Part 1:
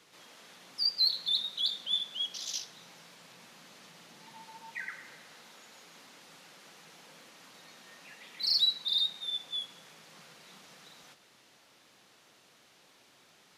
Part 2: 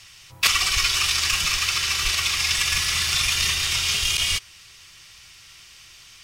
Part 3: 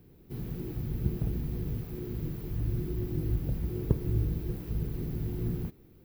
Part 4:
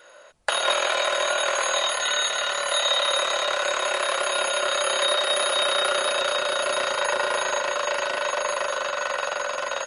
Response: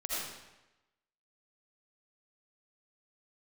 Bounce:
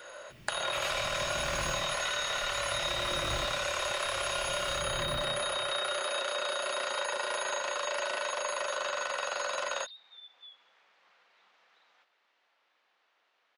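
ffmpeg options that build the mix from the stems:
-filter_complex "[0:a]volume=28.5dB,asoftclip=hard,volume=-28.5dB,adelay=900,volume=-7dB[link_01];[1:a]adelay=300,volume=-8.5dB,asplit=2[link_02][link_03];[link_03]volume=-16.5dB[link_04];[2:a]acompressor=threshold=-35dB:ratio=2.5,aeval=exprs='val(0)*pow(10,-25*if(lt(mod(-0.58*n/s,1),2*abs(-0.58)/1000),1-mod(-0.58*n/s,1)/(2*abs(-0.58)/1000),(mod(-0.58*n/s,1)-2*abs(-0.58)/1000)/(1-2*abs(-0.58)/1000))/20)':channel_layout=same,volume=-1dB,asplit=2[link_05][link_06];[link_06]volume=-6dB[link_07];[3:a]acrossover=split=330|3100[link_08][link_09][link_10];[link_08]acompressor=threshold=-54dB:ratio=4[link_11];[link_09]acompressor=threshold=-29dB:ratio=4[link_12];[link_10]acompressor=threshold=-36dB:ratio=4[link_13];[link_11][link_12][link_13]amix=inputs=3:normalize=0,volume=2dB,asplit=2[link_14][link_15];[link_15]volume=-22dB[link_16];[link_01][link_02]amix=inputs=2:normalize=0,highpass=690,lowpass=2600,acompressor=threshold=-50dB:ratio=2,volume=0dB[link_17];[link_05][link_14]amix=inputs=2:normalize=0,acompressor=threshold=-33dB:ratio=3,volume=0dB[link_18];[4:a]atrim=start_sample=2205[link_19];[link_04][link_07][link_16]amix=inputs=3:normalize=0[link_20];[link_20][link_19]afir=irnorm=-1:irlink=0[link_21];[link_17][link_18][link_21]amix=inputs=3:normalize=0"

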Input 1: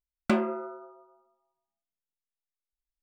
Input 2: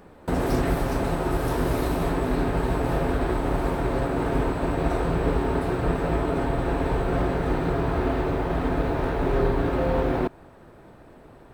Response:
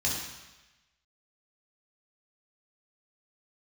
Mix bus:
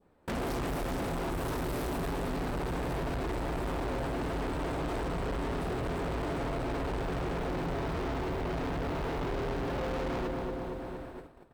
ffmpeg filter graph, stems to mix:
-filter_complex "[0:a]volume=-4.5dB[link_01];[1:a]volume=23.5dB,asoftclip=hard,volume=-23.5dB,volume=2dB,asplit=2[link_02][link_03];[link_03]volume=-7dB,aecho=0:1:232|464|696|928|1160|1392|1624|1856|2088:1|0.58|0.336|0.195|0.113|0.0656|0.0381|0.0221|0.0128[link_04];[link_01][link_02][link_04]amix=inputs=3:normalize=0,agate=range=-19dB:threshold=-41dB:ratio=16:detection=peak,adynamicequalizer=threshold=0.00501:dfrequency=1800:dqfactor=1.1:tfrequency=1800:tqfactor=1.1:attack=5:release=100:ratio=0.375:range=2.5:mode=cutabove:tftype=bell,asoftclip=type=tanh:threshold=-31.5dB"

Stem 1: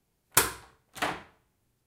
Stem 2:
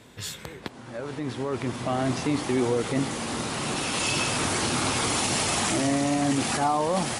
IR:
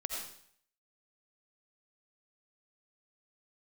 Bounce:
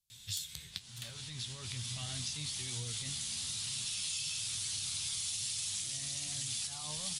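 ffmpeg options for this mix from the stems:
-filter_complex "[0:a]acompressor=threshold=-27dB:ratio=6,volume=-16dB[link_01];[1:a]flanger=delay=8.4:depth=4.9:regen=54:speed=1.1:shape=sinusoidal,adelay=100,volume=-1.5dB[link_02];[link_01][link_02]amix=inputs=2:normalize=0,firequalizer=gain_entry='entry(120,0);entry(290,-24);entry(3500,11)':delay=0.05:min_phase=1,acompressor=threshold=-36dB:ratio=6"

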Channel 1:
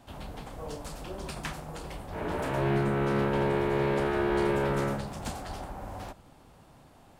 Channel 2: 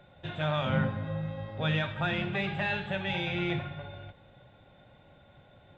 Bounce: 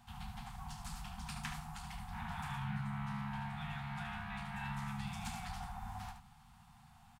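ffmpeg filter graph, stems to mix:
ffmpeg -i stem1.wav -i stem2.wav -filter_complex "[0:a]acompressor=threshold=-32dB:ratio=6,volume=-5dB,asplit=2[link_01][link_02];[link_02]volume=-8dB[link_03];[1:a]adelay=1950,volume=-18.5dB[link_04];[link_03]aecho=0:1:73:1[link_05];[link_01][link_04][link_05]amix=inputs=3:normalize=0,afftfilt=real='re*(1-between(b*sr/4096,240,690))':imag='im*(1-between(b*sr/4096,240,690))':win_size=4096:overlap=0.75" out.wav

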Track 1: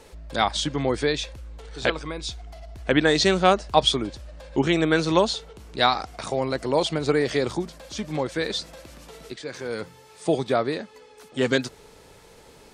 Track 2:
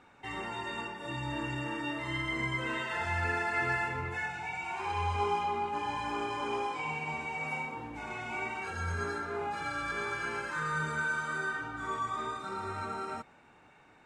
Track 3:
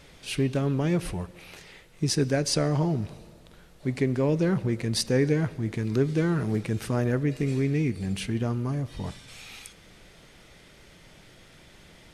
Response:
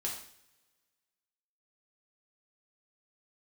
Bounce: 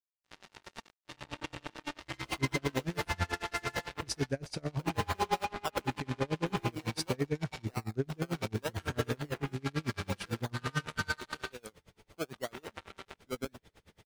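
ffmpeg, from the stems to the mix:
-filter_complex "[0:a]alimiter=limit=-11dB:level=0:latency=1:release=268,acrusher=samples=19:mix=1:aa=0.000001:lfo=1:lforange=11.4:lforate=0.81,adelay=1900,volume=-11dB[link_01];[1:a]highshelf=frequency=2500:gain=-3,acrusher=bits=4:mix=0:aa=0.5,volume=2dB,asplit=3[link_02][link_03][link_04];[link_02]atrim=end=11.52,asetpts=PTS-STARTPTS,afade=type=out:start_time=11.516:duration=0.004:curve=hsin[link_05];[link_03]atrim=start=11.52:end=12.33,asetpts=PTS-STARTPTS,volume=0[link_06];[link_04]atrim=start=12.33,asetpts=PTS-STARTPTS,afade=type=in:duration=0.004:curve=hsin[link_07];[link_05][link_06][link_07]concat=n=3:v=0:a=1[link_08];[2:a]equalizer=frequency=83:width_type=o:width=0.77:gain=8.5,adelay=2000,volume=-6.5dB[link_09];[link_01][link_08][link_09]amix=inputs=3:normalize=0,aeval=exprs='val(0)*pow(10,-31*(0.5-0.5*cos(2*PI*9*n/s))/20)':channel_layout=same"

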